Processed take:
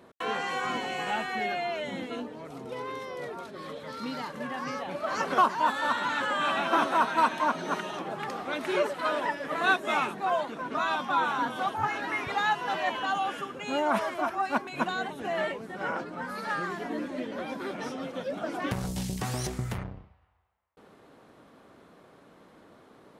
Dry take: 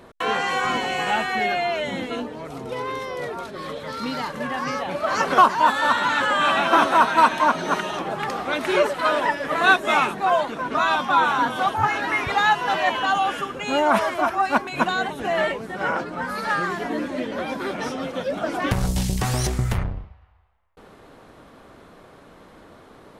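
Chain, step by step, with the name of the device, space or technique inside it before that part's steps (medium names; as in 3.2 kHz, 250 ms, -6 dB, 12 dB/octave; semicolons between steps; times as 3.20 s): filter by subtraction (in parallel: low-pass 200 Hz 12 dB/octave + polarity flip); on the sum: trim -8.5 dB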